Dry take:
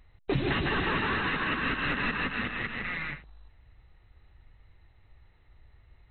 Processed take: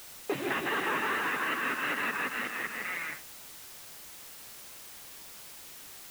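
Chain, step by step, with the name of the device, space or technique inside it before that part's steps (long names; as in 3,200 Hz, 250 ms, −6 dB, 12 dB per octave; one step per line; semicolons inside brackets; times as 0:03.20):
wax cylinder (band-pass filter 360–2,700 Hz; tape wow and flutter; white noise bed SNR 12 dB)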